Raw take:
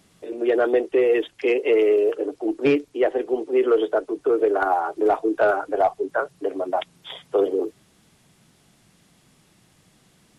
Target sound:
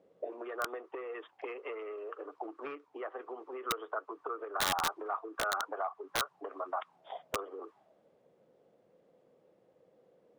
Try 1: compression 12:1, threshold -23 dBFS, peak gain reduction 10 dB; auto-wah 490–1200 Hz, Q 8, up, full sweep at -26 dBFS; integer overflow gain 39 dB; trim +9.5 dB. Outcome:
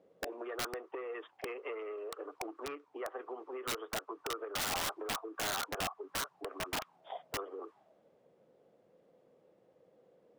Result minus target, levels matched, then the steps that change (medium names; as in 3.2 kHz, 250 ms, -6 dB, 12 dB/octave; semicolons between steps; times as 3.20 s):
integer overflow: distortion +7 dB
change: integer overflow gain 32.5 dB